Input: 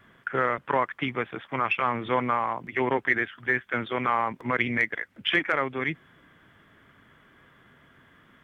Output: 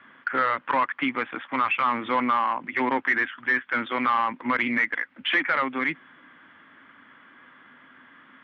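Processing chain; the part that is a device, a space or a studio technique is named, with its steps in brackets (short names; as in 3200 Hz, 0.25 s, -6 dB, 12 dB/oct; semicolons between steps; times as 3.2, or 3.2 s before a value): overdrive pedal into a guitar cabinet (overdrive pedal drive 16 dB, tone 1600 Hz, clips at -9 dBFS; speaker cabinet 98–3800 Hz, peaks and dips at 130 Hz -5 dB, 260 Hz +9 dB, 420 Hz -8 dB, 670 Hz -6 dB); low shelf 460 Hz -4.5 dB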